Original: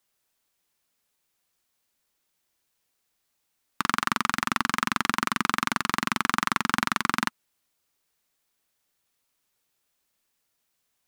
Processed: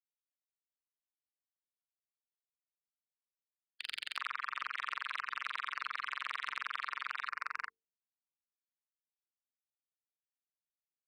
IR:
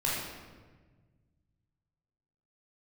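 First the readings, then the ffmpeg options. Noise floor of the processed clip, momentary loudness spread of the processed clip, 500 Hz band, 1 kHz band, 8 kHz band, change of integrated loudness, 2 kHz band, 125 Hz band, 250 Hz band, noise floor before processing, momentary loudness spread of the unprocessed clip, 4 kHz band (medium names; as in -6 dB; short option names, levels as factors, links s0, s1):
under -85 dBFS, 3 LU, -22.5 dB, -14.0 dB, -24.5 dB, -13.0 dB, -11.0 dB, under -35 dB, under -40 dB, -77 dBFS, 2 LU, -11.5 dB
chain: -filter_complex "[0:a]bandreject=f=880:w=12,asplit=2[s0][s1];[s1]adelay=38,volume=0.422[s2];[s0][s2]amix=inputs=2:normalize=0,acrossover=split=750|2300[s3][s4][s5];[s4]adelay=370[s6];[s3]adelay=510[s7];[s7][s6][s5]amix=inputs=3:normalize=0,acrossover=split=3000[s8][s9];[s9]acompressor=threshold=0.00631:ratio=4:attack=1:release=60[s10];[s8][s10]amix=inputs=2:normalize=0,lowshelf=f=410:g=-4.5,acompressor=threshold=0.0355:ratio=6,aderivative,aresample=11025,aeval=exprs='sgn(val(0))*max(abs(val(0))-0.00133,0)':c=same,aresample=44100,afftfilt=real='re*gte(hypot(re,im),0.00398)':imag='im*gte(hypot(re,im),0.00398)':win_size=1024:overlap=0.75,asoftclip=type=tanh:threshold=0.0133,bandreject=f=50:t=h:w=6,bandreject=f=100:t=h:w=6,bandreject=f=150:t=h:w=6,bandreject=f=200:t=h:w=6,bandreject=f=250:t=h:w=6,bandreject=f=300:t=h:w=6,bandreject=f=350:t=h:w=6,bandreject=f=400:t=h:w=6,bandreject=f=450:t=h:w=6,volume=4.47"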